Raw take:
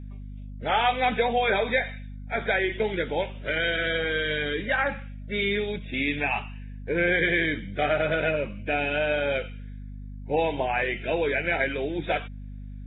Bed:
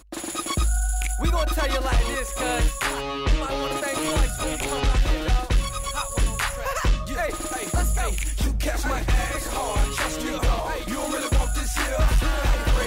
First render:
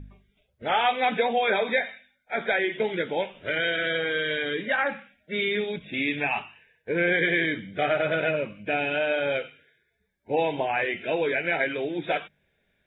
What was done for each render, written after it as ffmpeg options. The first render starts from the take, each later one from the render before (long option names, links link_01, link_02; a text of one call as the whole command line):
ffmpeg -i in.wav -af "bandreject=frequency=50:width_type=h:width=4,bandreject=frequency=100:width_type=h:width=4,bandreject=frequency=150:width_type=h:width=4,bandreject=frequency=200:width_type=h:width=4,bandreject=frequency=250:width_type=h:width=4" out.wav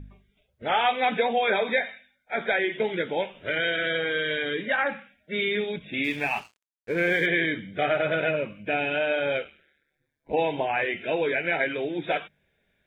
ffmpeg -i in.wav -filter_complex "[0:a]asettb=1/sr,asplit=3[link_01][link_02][link_03];[link_01]atrim=end=6.044[link_04];[link_02]atrim=start=6.04:end=7.26,asetpts=PTS-STARTPTS,afade=type=in:duration=0.004:curve=qsin,afade=type=out:start_time=1.216:duration=0.004:curve=qsin,aeval=exprs='sgn(val(0))*max(abs(val(0))-0.00501,0)':channel_layout=same[link_05];[link_03]atrim=start=7.256[link_06];[link_04][link_05]acrossfade=duration=0.004:curve1=hsin:curve2=qsin[link_07];[link_07][link_06]acrossfade=duration=0.004:curve1=qsin:curve2=hsin,asplit=3[link_08][link_09][link_10];[link_08]afade=type=out:start_time=9.44:duration=0.02[link_11];[link_09]aeval=exprs='val(0)*sin(2*PI*73*n/s)':channel_layout=same,afade=type=in:start_time=9.44:duration=0.02,afade=type=out:start_time=10.32:duration=0.02[link_12];[link_10]afade=type=in:start_time=10.32:duration=0.02[link_13];[link_11][link_12][link_13]amix=inputs=3:normalize=0" out.wav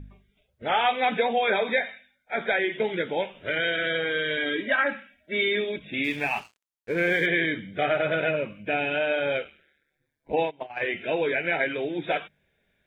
ffmpeg -i in.wav -filter_complex "[0:a]asettb=1/sr,asplit=3[link_01][link_02][link_03];[link_01]atrim=end=4.374[link_04];[link_02]atrim=start=4.37:end=5.8,asetpts=PTS-STARTPTS,afade=type=in:duration=0.004:curve=qsin,afade=type=out:start_time=1.426:duration=0.004:curve=qsin,aecho=1:1:3.1:0.65,atrim=end_sample=63063[link_05];[link_03]atrim=start=5.796[link_06];[link_04][link_05]acrossfade=duration=0.004:curve1=hsin:curve2=qsin[link_07];[link_07][link_06]acrossfade=duration=0.004:curve1=qsin:curve2=hsin,asplit=3[link_08][link_09][link_10];[link_08]afade=type=out:start_time=10.35:duration=0.02[link_11];[link_09]agate=range=-24dB:threshold=-25dB:ratio=16:release=100:detection=peak,afade=type=in:start_time=10.35:duration=0.02,afade=type=out:start_time=10.8:duration=0.02[link_12];[link_10]afade=type=in:start_time=10.8:duration=0.02[link_13];[link_11][link_12][link_13]amix=inputs=3:normalize=0" out.wav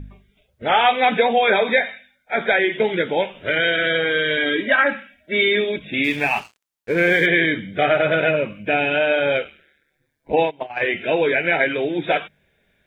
ffmpeg -i in.wav -af "volume=7dB" out.wav